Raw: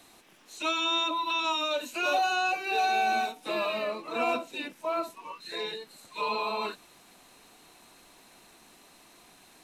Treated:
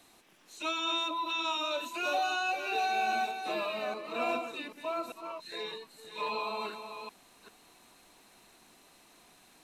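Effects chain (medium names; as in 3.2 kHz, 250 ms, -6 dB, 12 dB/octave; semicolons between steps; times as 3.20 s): chunks repeated in reverse 394 ms, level -8 dB; trim -4.5 dB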